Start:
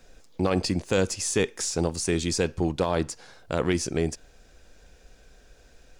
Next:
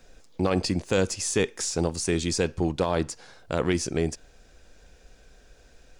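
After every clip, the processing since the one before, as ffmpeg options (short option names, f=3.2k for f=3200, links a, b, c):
-af "equalizer=f=13k:t=o:w=0.25:g=-7.5"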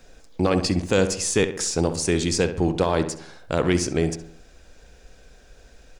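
-filter_complex "[0:a]asplit=2[a][b];[b]adelay=67,lowpass=f=2.3k:p=1,volume=-10dB,asplit=2[c][d];[d]adelay=67,lowpass=f=2.3k:p=1,volume=0.5,asplit=2[e][f];[f]adelay=67,lowpass=f=2.3k:p=1,volume=0.5,asplit=2[g][h];[h]adelay=67,lowpass=f=2.3k:p=1,volume=0.5,asplit=2[i][j];[j]adelay=67,lowpass=f=2.3k:p=1,volume=0.5[k];[a][c][e][g][i][k]amix=inputs=6:normalize=0,volume=3.5dB"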